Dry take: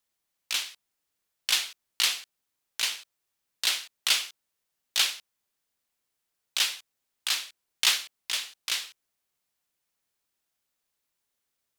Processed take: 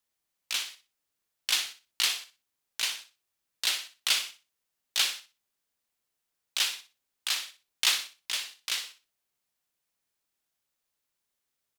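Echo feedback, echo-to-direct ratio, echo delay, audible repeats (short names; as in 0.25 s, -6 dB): 23%, -11.5 dB, 61 ms, 2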